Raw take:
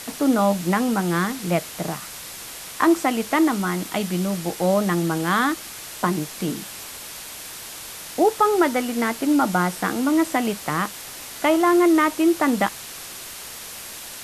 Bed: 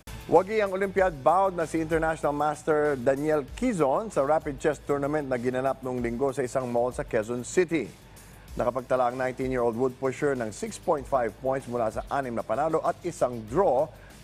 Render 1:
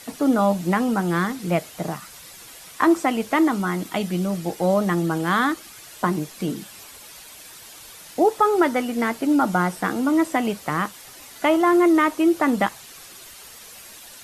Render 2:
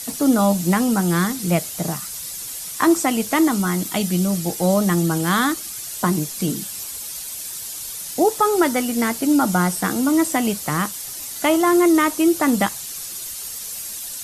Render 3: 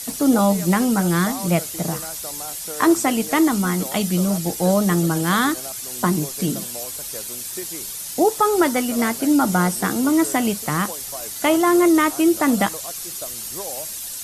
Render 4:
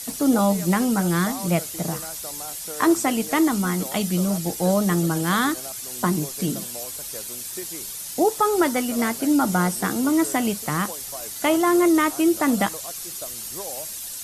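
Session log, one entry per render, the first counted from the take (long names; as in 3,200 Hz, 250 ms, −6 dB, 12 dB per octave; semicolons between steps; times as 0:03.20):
broadband denoise 9 dB, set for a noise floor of −37 dBFS
bass and treble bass +6 dB, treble +14 dB
mix in bed −11.5 dB
level −2.5 dB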